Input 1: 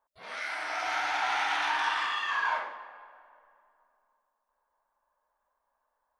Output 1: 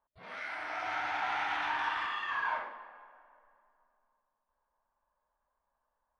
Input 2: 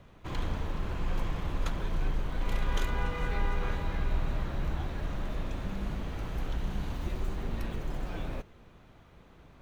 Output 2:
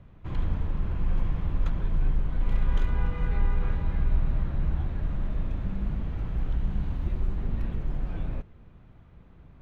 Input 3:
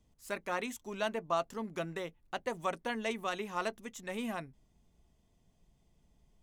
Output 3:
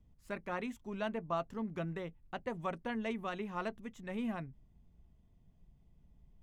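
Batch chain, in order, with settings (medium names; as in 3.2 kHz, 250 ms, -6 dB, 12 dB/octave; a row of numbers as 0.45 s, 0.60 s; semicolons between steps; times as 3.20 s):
tone controls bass +10 dB, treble -12 dB; trim -4 dB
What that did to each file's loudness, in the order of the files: -4.5 LU, +4.5 LU, -2.5 LU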